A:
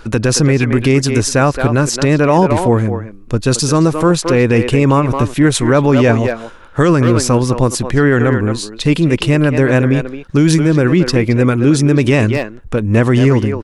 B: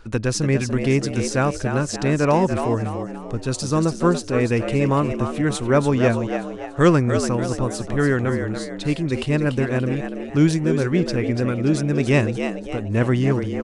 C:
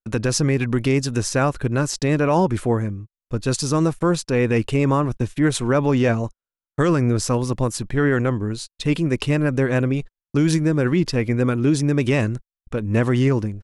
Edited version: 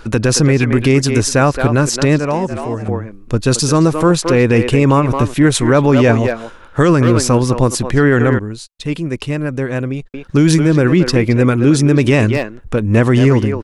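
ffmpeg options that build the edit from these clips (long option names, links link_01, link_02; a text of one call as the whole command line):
ffmpeg -i take0.wav -i take1.wav -i take2.wav -filter_complex "[0:a]asplit=3[link_01][link_02][link_03];[link_01]atrim=end=2.192[link_04];[1:a]atrim=start=2.188:end=2.882[link_05];[link_02]atrim=start=2.878:end=8.392[link_06];[2:a]atrim=start=8.388:end=10.142[link_07];[link_03]atrim=start=10.138[link_08];[link_04][link_05]acrossfade=duration=0.004:curve1=hsin:curve2=hsin[link_09];[link_09][link_06]acrossfade=duration=0.004:curve1=hsin:curve2=hsin[link_10];[link_10][link_07]acrossfade=duration=0.004:curve1=hsin:curve2=hsin[link_11];[link_11][link_08]acrossfade=duration=0.004:curve1=hsin:curve2=hsin" out.wav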